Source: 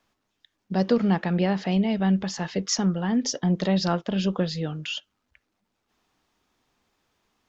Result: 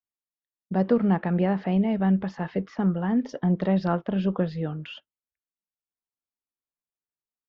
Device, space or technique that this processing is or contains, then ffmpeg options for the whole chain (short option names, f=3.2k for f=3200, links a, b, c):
hearing-loss simulation: -filter_complex "[0:a]asettb=1/sr,asplit=3[a][b][c];[a]atrim=end=2.354[d];[b]atrim=start=2.35:end=3.29,asetpts=PTS-STARTPTS,afade=t=in:d=0.004:c=qsin,afade=t=out:st=0.936:d=0.004:c=qsin,acrossover=split=3500[e][f];[f]acompressor=threshold=-41dB:ratio=4:attack=1:release=60[g];[e][g]amix=inputs=2:normalize=0[h];[c]atrim=start=3.286[i];[d][h]acrossfade=d=0.004:c1=hsin:c2=qsin[j];[j][i]acrossfade=d=0.004:c1=qsin:c2=hsin,lowpass=1.8k,agate=range=-33dB:threshold=-39dB:ratio=3:detection=peak"